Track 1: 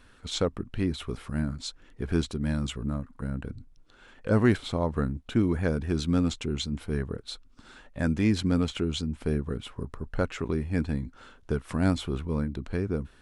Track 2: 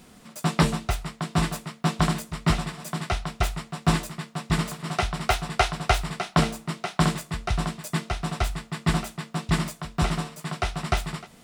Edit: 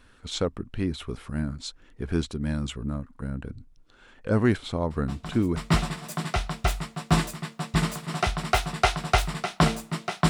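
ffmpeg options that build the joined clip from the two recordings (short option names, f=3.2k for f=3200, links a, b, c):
-filter_complex "[1:a]asplit=2[a][b];[0:a]apad=whole_dur=10.29,atrim=end=10.29,atrim=end=5.562[c];[b]atrim=start=2.318:end=7.05[d];[a]atrim=start=1.66:end=2.32,asetpts=PTS-STARTPTS,volume=-16dB,afade=t=in:d=0.004:c=hsin,afade=t=out:st=0.656:d=0.004:c=hsin,adelay=4900[e];[c][d]acrossfade=d=0.004:c1=hsin:c2=hsin[f];[f][e]amix=inputs=2:normalize=0"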